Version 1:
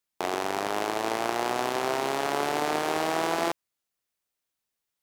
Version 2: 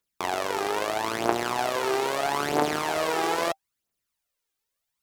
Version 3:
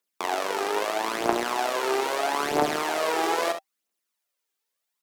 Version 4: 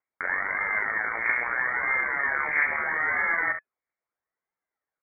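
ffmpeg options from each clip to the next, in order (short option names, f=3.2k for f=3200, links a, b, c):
-af "bandreject=f=780:w=25,aphaser=in_gain=1:out_gain=1:delay=2.6:decay=0.59:speed=0.77:type=triangular"
-filter_complex "[0:a]acrossover=split=190|5200[a][b][c];[a]acrusher=bits=5:mix=0:aa=0.5[d];[d][b][c]amix=inputs=3:normalize=0,aecho=1:1:46|68:0.266|0.299"
-af "asoftclip=type=hard:threshold=-15dB,lowpass=f=2.1k:t=q:w=0.5098,lowpass=f=2.1k:t=q:w=0.6013,lowpass=f=2.1k:t=q:w=0.9,lowpass=f=2.1k:t=q:w=2.563,afreqshift=-2500"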